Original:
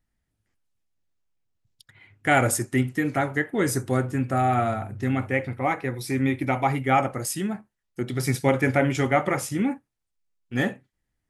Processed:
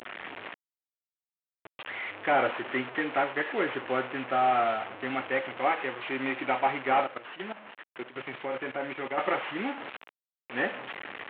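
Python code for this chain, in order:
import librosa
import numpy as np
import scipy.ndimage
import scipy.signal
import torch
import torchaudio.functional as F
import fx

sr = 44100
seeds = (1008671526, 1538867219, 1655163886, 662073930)

y = fx.delta_mod(x, sr, bps=16000, step_db=-28.5)
y = fx.level_steps(y, sr, step_db=14, at=(7.04, 9.18))
y = scipy.signal.sosfilt(scipy.signal.butter(2, 470.0, 'highpass', fs=sr, output='sos'), y)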